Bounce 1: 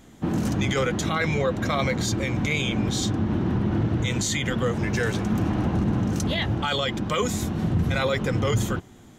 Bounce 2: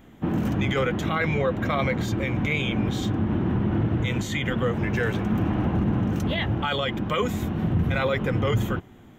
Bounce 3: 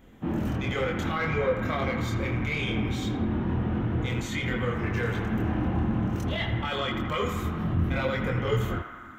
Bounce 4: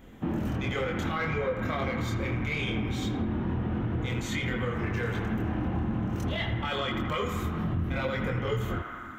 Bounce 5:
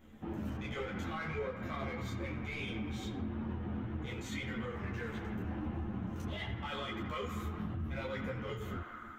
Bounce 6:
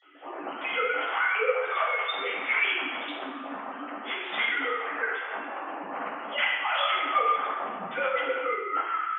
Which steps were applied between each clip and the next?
high-order bell 6.7 kHz -12 dB
saturation -15.5 dBFS, distortion -22 dB; chorus voices 6, 0.23 Hz, delay 25 ms, depth 2.3 ms; band-passed feedback delay 82 ms, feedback 85%, band-pass 1.4 kHz, level -6.5 dB
compression 3:1, threshold -31 dBFS, peak gain reduction 8.5 dB; trim +3 dB
in parallel at -8 dB: saturation -36 dBFS, distortion -7 dB; on the sum: three-phase chorus; trim -7.5 dB
formants replaced by sine waves; high-pass 850 Hz 12 dB/octave; reverberation RT60 1.1 s, pre-delay 3 ms, DRR -8.5 dB; trim +4 dB

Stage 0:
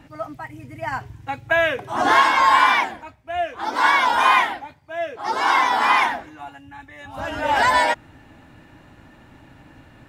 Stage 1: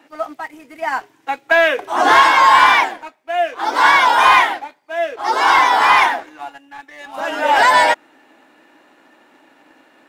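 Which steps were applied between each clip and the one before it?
high-pass 300 Hz 24 dB/octave; waveshaping leveller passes 1; trim +2.5 dB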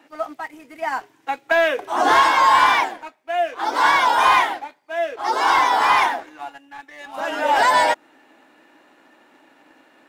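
dynamic bell 2.1 kHz, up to -4 dB, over -23 dBFS, Q 0.8; trim -2.5 dB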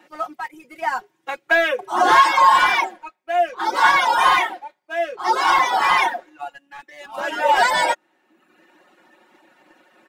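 reverb removal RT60 0.93 s; comb 5.5 ms, depth 69%

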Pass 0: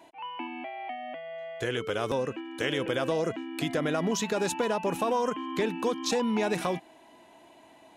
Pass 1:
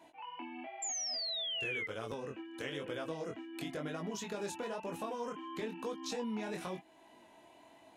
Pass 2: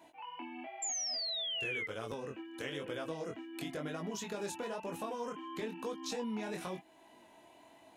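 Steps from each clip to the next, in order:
chorus 1 Hz, delay 18 ms, depth 6.9 ms; painted sound fall, 0.82–1.87 s, 2–7.4 kHz -29 dBFS; compression 1.5:1, threshold -47 dBFS, peak gain reduction 8 dB; trim -2 dB
treble shelf 10 kHz +4.5 dB

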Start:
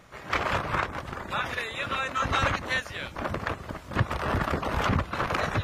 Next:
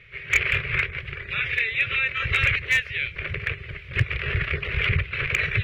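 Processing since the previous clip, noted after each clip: FFT filter 140 Hz 0 dB, 270 Hz -29 dB, 400 Hz -2 dB, 860 Hz -28 dB, 2.3 kHz +12 dB, 6.8 kHz -24 dB; hard clipper -15.5 dBFS, distortion -21 dB; trim +4 dB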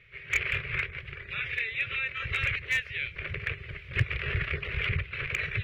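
gain riding 2 s; trim -7.5 dB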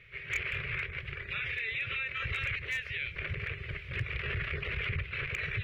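peak limiter -27 dBFS, peak gain reduction 11.5 dB; trim +1.5 dB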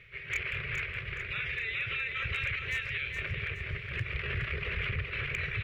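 reverse; upward compressor, threshold -41 dBFS; reverse; feedback delay 418 ms, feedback 38%, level -6 dB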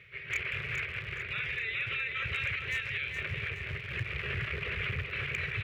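rattle on loud lows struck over -43 dBFS, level -34 dBFS; high-pass 76 Hz

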